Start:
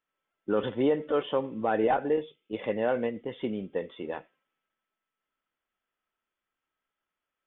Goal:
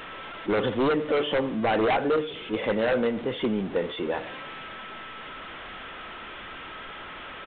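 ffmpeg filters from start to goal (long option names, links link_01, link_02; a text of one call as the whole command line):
ffmpeg -i in.wav -af "aeval=exprs='val(0)+0.5*0.0158*sgn(val(0))':channel_layout=same,bandreject=frequency=147.8:width_type=h:width=4,bandreject=frequency=295.6:width_type=h:width=4,bandreject=frequency=443.4:width_type=h:width=4,bandreject=frequency=591.2:width_type=h:width=4,bandreject=frequency=739:width_type=h:width=4,bandreject=frequency=886.8:width_type=h:width=4,bandreject=frequency=1034.6:width_type=h:width=4,bandreject=frequency=1182.4:width_type=h:width=4,bandreject=frequency=1330.2:width_type=h:width=4,bandreject=frequency=1478:width_type=h:width=4,bandreject=frequency=1625.8:width_type=h:width=4,bandreject=frequency=1773.6:width_type=h:width=4,bandreject=frequency=1921.4:width_type=h:width=4,bandreject=frequency=2069.2:width_type=h:width=4,bandreject=frequency=2217:width_type=h:width=4,bandreject=frequency=2364.8:width_type=h:width=4,bandreject=frequency=2512.6:width_type=h:width=4,bandreject=frequency=2660.4:width_type=h:width=4,bandreject=frequency=2808.2:width_type=h:width=4,bandreject=frequency=2956:width_type=h:width=4,bandreject=frequency=3103.8:width_type=h:width=4,bandreject=frequency=3251.6:width_type=h:width=4,bandreject=frequency=3399.4:width_type=h:width=4,bandreject=frequency=3547.2:width_type=h:width=4,bandreject=frequency=3695:width_type=h:width=4,bandreject=frequency=3842.8:width_type=h:width=4,bandreject=frequency=3990.6:width_type=h:width=4,bandreject=frequency=4138.4:width_type=h:width=4,bandreject=frequency=4286.2:width_type=h:width=4,bandreject=frequency=4434:width_type=h:width=4,bandreject=frequency=4581.8:width_type=h:width=4,aresample=8000,aeval=exprs='0.0794*(abs(mod(val(0)/0.0794+3,4)-2)-1)':channel_layout=same,aresample=44100,volume=4.5dB" out.wav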